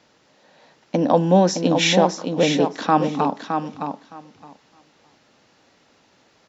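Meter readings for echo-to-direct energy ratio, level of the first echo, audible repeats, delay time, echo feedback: -6.5 dB, -6.5 dB, 2, 0.615 s, 15%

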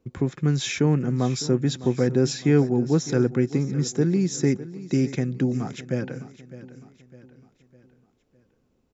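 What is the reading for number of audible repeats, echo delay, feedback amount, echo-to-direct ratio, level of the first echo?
3, 0.606 s, 46%, -15.0 dB, -16.0 dB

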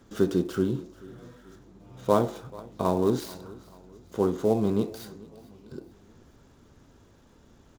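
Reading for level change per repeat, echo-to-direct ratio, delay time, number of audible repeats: -7.0 dB, -20.0 dB, 0.436 s, 3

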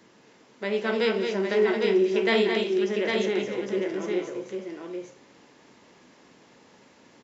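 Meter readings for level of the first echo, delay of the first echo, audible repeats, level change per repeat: -15.0 dB, 0.182 s, 3, no steady repeat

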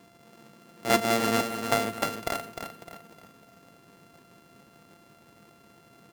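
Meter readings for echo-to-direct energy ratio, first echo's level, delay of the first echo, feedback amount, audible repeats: -7.5 dB, -8.0 dB, 0.304 s, 38%, 4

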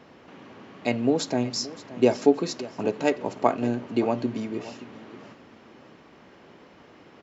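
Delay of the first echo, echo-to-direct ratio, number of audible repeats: 0.574 s, -16.5 dB, 2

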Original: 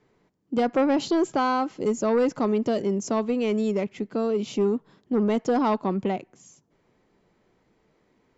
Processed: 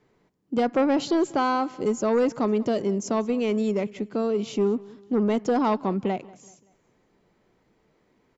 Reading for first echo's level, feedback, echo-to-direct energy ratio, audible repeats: -22.0 dB, 42%, -21.0 dB, 2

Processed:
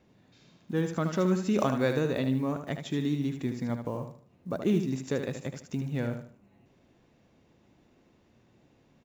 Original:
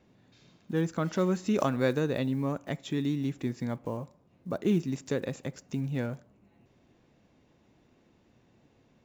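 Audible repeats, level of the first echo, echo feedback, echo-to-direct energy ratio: 3, -7.5 dB, 30%, -7.0 dB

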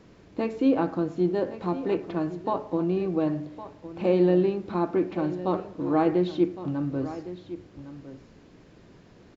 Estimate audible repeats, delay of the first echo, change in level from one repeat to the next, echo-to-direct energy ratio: 1, 1.11 s, no steady repeat, -14.0 dB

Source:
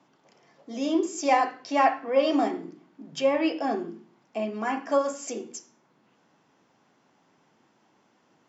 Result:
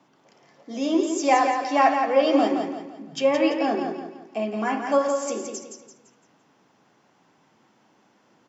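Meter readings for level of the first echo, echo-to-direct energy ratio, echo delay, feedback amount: -6.0 dB, -5.5 dB, 0.17 s, 38%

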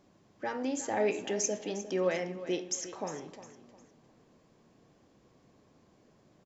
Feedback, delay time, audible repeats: 31%, 0.355 s, 3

